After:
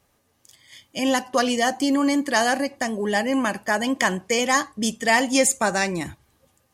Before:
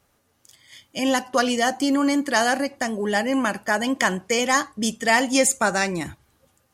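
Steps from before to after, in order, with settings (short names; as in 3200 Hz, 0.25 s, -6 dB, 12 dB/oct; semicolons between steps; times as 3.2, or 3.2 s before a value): notch 1400 Hz, Q 10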